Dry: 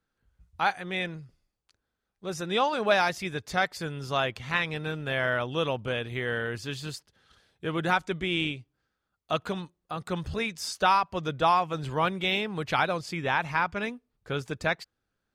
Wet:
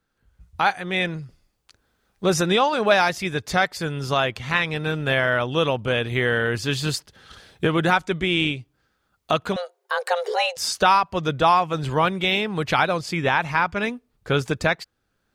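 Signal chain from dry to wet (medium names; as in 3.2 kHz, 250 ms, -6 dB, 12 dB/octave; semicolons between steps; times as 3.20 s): recorder AGC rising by 7.5 dB/s; 9.56–10.57 s: frequency shift +350 Hz; trim +5.5 dB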